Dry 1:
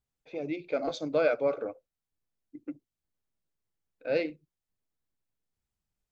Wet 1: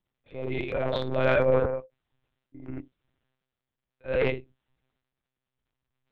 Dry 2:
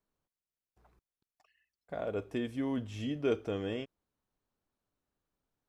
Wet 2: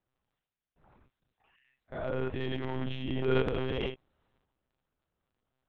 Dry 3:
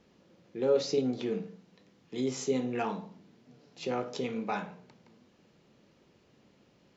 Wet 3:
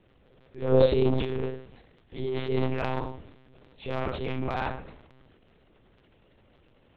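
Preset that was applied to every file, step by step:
reverb whose tail is shaped and stops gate 110 ms flat, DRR 0.5 dB
one-pitch LPC vocoder at 8 kHz 130 Hz
transient designer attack −3 dB, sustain +11 dB

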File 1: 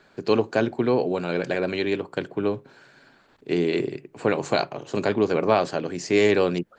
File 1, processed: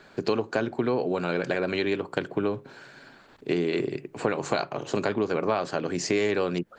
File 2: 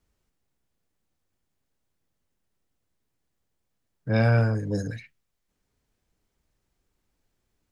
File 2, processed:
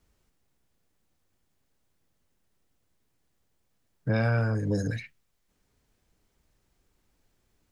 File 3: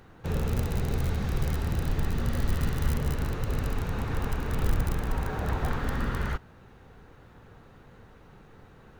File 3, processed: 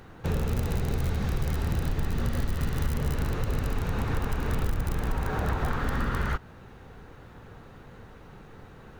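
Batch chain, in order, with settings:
dynamic equaliser 1,300 Hz, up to +4 dB, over −40 dBFS, Q 2
downward compressor 4 to 1, threshold −28 dBFS
level +4.5 dB

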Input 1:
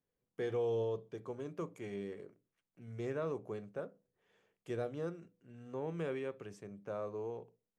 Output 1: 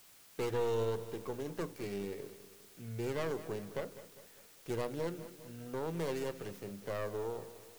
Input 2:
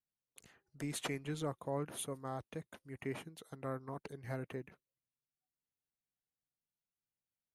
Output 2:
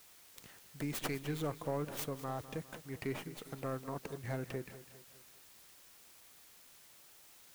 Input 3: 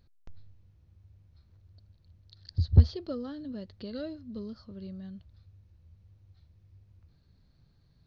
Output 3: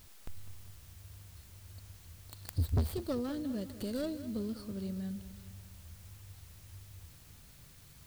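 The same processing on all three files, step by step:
stylus tracing distortion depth 0.42 ms
in parallel at −2 dB: downward compressor, threshold −44 dBFS
on the sum: soft clipping −24.5 dBFS
bit-depth reduction 10 bits, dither triangular
feedback echo at a low word length 202 ms, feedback 55%, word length 10 bits, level −14 dB

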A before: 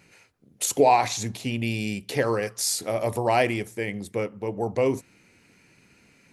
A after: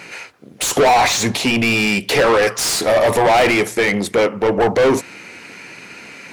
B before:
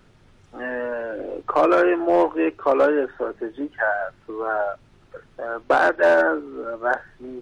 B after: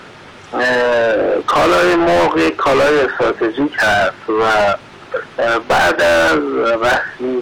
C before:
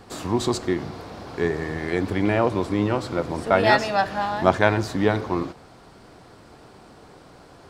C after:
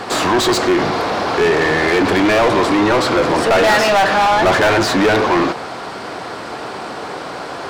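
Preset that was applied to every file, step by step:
mid-hump overdrive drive 36 dB, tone 3,100 Hz, clips at −1 dBFS
level −4 dB

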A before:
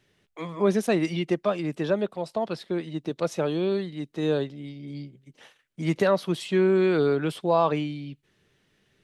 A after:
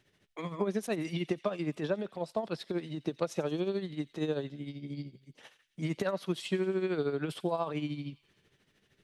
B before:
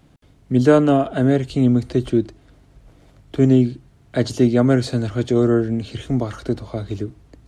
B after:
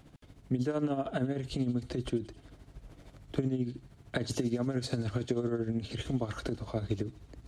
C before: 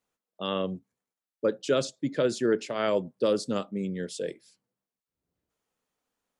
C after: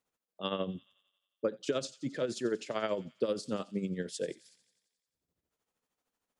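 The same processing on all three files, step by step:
brickwall limiter −11 dBFS
downward compressor 5 to 1, threshold −26 dBFS
amplitude tremolo 13 Hz, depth 63%
on a send: delay with a high-pass on its return 89 ms, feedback 65%, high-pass 2,700 Hz, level −16 dB

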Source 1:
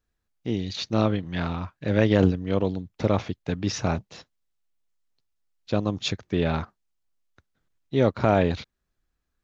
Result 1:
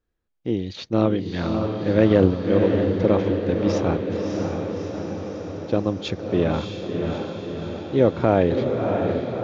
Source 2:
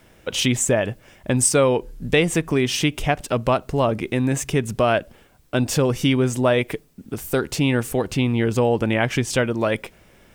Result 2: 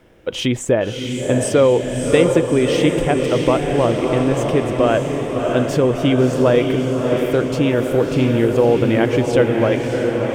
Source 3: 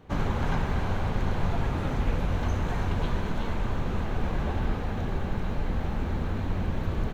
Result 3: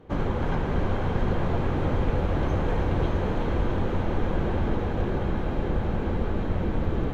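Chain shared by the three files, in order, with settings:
high-shelf EQ 4,200 Hz −10.5 dB
hollow resonant body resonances 340/490/3,200 Hz, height 6 dB, ringing for 25 ms
on a send: feedback delay with all-pass diffusion 632 ms, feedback 65%, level −4 dB

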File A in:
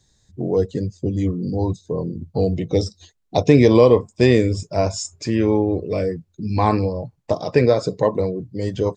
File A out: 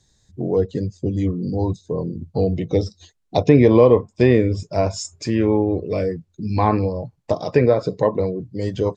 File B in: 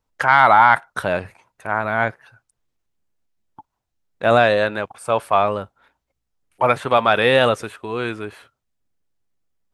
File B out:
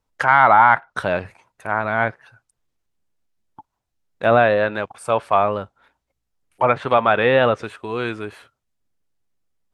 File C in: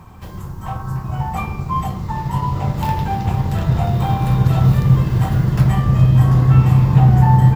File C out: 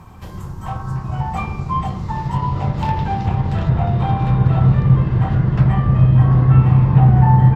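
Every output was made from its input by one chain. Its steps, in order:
treble cut that deepens with the level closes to 2,400 Hz, closed at −12 dBFS

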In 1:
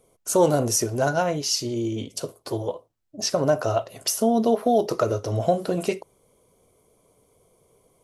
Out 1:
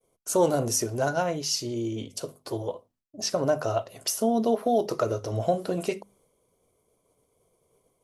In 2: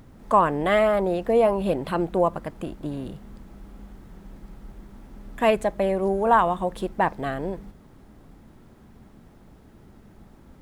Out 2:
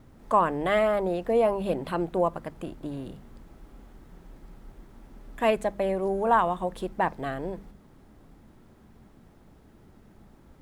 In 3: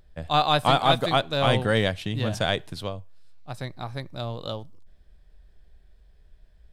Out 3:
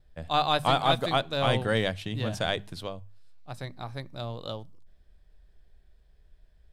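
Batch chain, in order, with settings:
mains-hum notches 50/100/150/200/250 Hz
downward expander −57 dBFS
level −3.5 dB

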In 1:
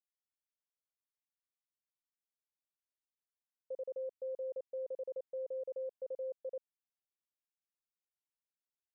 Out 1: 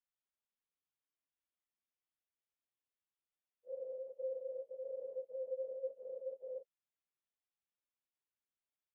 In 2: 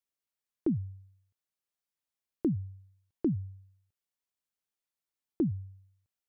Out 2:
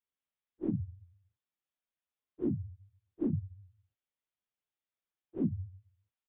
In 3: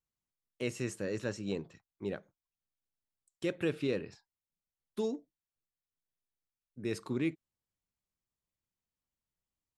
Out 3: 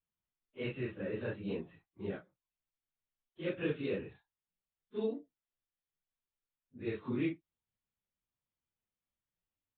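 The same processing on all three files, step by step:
random phases in long frames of 100 ms
downsampling to 8,000 Hz
level −2 dB

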